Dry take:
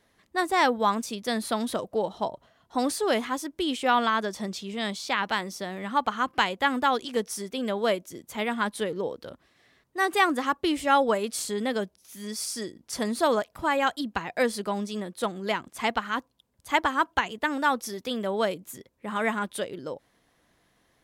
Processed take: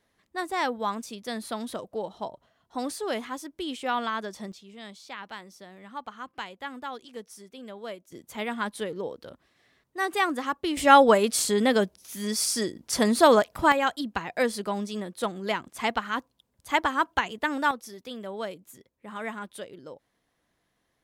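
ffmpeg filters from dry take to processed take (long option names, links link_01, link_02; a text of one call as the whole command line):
ffmpeg -i in.wav -af "asetnsamples=nb_out_samples=441:pad=0,asendcmd='4.52 volume volume -13dB;8.12 volume volume -3dB;10.77 volume volume 6dB;13.72 volume volume -0.5dB;17.71 volume volume -8dB',volume=-5.5dB" out.wav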